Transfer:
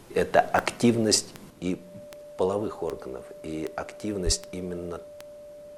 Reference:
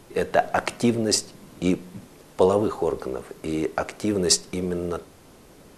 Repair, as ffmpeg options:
ffmpeg -i in.wav -filter_complex "[0:a]adeclick=threshold=4,bandreject=frequency=590:width=30,asplit=3[link_01][link_02][link_03];[link_01]afade=type=out:start_time=4.25:duration=0.02[link_04];[link_02]highpass=frequency=140:width=0.5412,highpass=frequency=140:width=1.3066,afade=type=in:start_time=4.25:duration=0.02,afade=type=out:start_time=4.37:duration=0.02[link_05];[link_03]afade=type=in:start_time=4.37:duration=0.02[link_06];[link_04][link_05][link_06]amix=inputs=3:normalize=0,asetnsamples=nb_out_samples=441:pad=0,asendcmd='1.5 volume volume 7dB',volume=0dB" out.wav

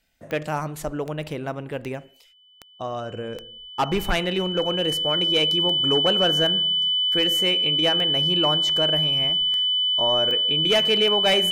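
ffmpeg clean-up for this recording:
ffmpeg -i in.wav -af "adeclick=threshold=4,bandreject=frequency=3000:width=30" out.wav

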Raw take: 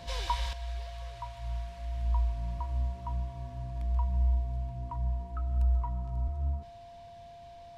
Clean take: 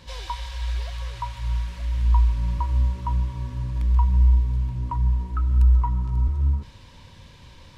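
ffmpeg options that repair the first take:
ffmpeg -i in.wav -af "bandreject=frequency=690:width=30,asetnsamples=nb_out_samples=441:pad=0,asendcmd='0.53 volume volume 10.5dB',volume=0dB" out.wav

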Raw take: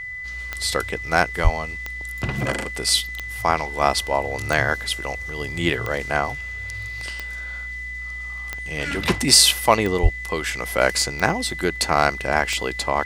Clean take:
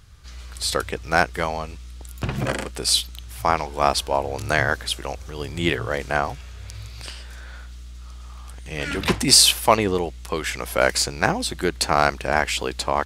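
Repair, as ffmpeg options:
ffmpeg -i in.wav -filter_complex "[0:a]adeclick=threshold=4,bandreject=frequency=2000:width=30,asplit=3[link_01][link_02][link_03];[link_01]afade=type=out:start_time=1.43:duration=0.02[link_04];[link_02]highpass=frequency=140:width=0.5412,highpass=frequency=140:width=1.3066,afade=type=in:start_time=1.43:duration=0.02,afade=type=out:start_time=1.55:duration=0.02[link_05];[link_03]afade=type=in:start_time=1.55:duration=0.02[link_06];[link_04][link_05][link_06]amix=inputs=3:normalize=0,asplit=3[link_07][link_08][link_09];[link_07]afade=type=out:start_time=10.02:duration=0.02[link_10];[link_08]highpass=frequency=140:width=0.5412,highpass=frequency=140:width=1.3066,afade=type=in:start_time=10.02:duration=0.02,afade=type=out:start_time=10.14:duration=0.02[link_11];[link_09]afade=type=in:start_time=10.14:duration=0.02[link_12];[link_10][link_11][link_12]amix=inputs=3:normalize=0" out.wav

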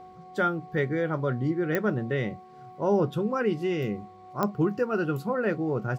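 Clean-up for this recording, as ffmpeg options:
ffmpeg -i in.wav -af "adeclick=threshold=4,bandreject=frequency=368.5:width_type=h:width=4,bandreject=frequency=737:width_type=h:width=4,bandreject=frequency=1105.5:width_type=h:width=4,bandreject=frequency=740:width=30" out.wav

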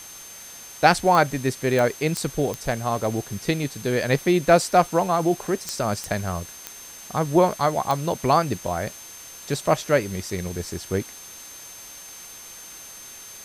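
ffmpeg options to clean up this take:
ffmpeg -i in.wav -af "adeclick=threshold=4,bandreject=frequency=6300:width=30,afwtdn=0.0079" out.wav

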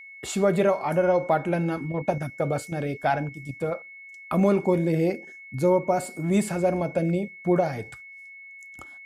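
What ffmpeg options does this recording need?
ffmpeg -i in.wav -af "bandreject=frequency=2200:width=30" out.wav

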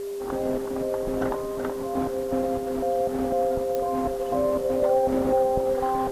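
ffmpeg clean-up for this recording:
ffmpeg -i in.wav -af "adeclick=threshold=4,bandreject=frequency=400:width=30,afwtdn=0.0035" out.wav

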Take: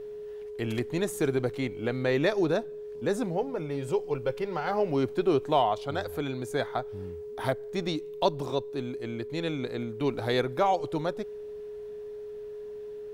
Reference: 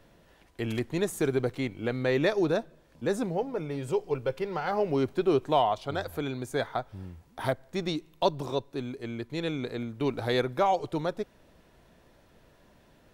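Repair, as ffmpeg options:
ffmpeg -i in.wav -af "bandreject=frequency=420:width=30" out.wav

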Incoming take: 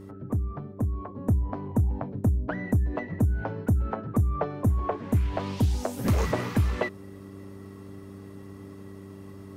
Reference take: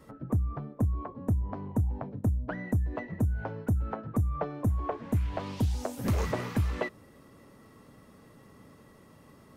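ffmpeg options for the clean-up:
ffmpeg -i in.wav -af "bandreject=frequency=97.8:width_type=h:width=4,bandreject=frequency=195.6:width_type=h:width=4,bandreject=frequency=293.4:width_type=h:width=4,bandreject=frequency=391.2:width_type=h:width=4,asetnsamples=nb_out_samples=441:pad=0,asendcmd='1.15 volume volume -4dB',volume=0dB" out.wav

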